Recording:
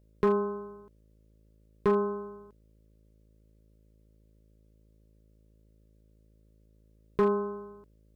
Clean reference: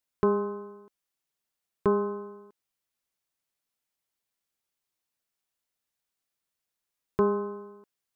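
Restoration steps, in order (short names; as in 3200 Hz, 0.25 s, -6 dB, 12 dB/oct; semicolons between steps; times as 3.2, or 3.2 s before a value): clip repair -17.5 dBFS; de-hum 53.8 Hz, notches 11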